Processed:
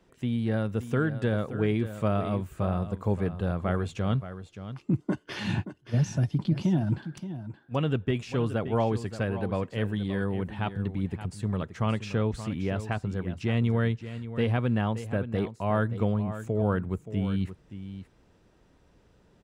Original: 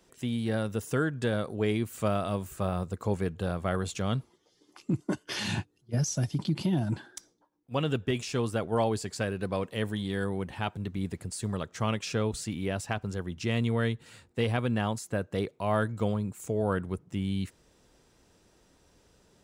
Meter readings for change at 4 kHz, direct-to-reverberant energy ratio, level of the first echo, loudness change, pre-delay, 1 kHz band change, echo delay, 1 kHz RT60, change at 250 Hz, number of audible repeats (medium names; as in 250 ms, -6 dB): -4.0 dB, no reverb, -12.0 dB, +2.0 dB, no reverb, 0.0 dB, 575 ms, no reverb, +2.5 dB, 1